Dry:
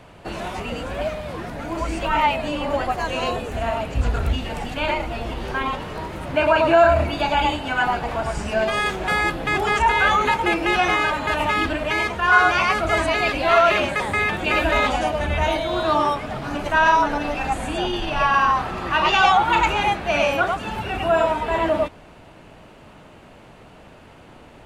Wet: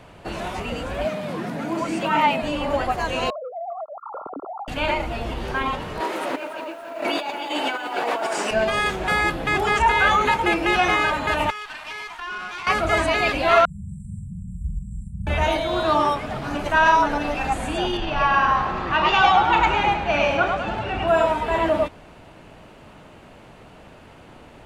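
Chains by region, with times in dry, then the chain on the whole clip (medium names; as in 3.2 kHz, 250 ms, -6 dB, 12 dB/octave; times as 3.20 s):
1.05–2.42 s: high-pass 180 Hz 24 dB/octave + tone controls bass +11 dB, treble 0 dB + upward compressor, threshold -24 dBFS
3.30–4.68 s: formants replaced by sine waves + brick-wall FIR low-pass 1.4 kHz + compression 5:1, threshold -30 dBFS
6.00–8.51 s: high-pass 300 Hz 24 dB/octave + compressor with a negative ratio -29 dBFS + bit-crushed delay 286 ms, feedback 55%, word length 8-bit, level -11 dB
11.50–12.67 s: steep high-pass 780 Hz 48 dB/octave + compression 4:1, threshold -26 dBFS + valve stage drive 25 dB, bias 0.75
13.65–15.27 s: brick-wall FIR band-stop 210–7300 Hz + distance through air 130 m + doubling 45 ms -4 dB
17.97–21.08 s: distance through air 93 m + two-band feedback delay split 640 Hz, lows 297 ms, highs 103 ms, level -9.5 dB
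whole clip: none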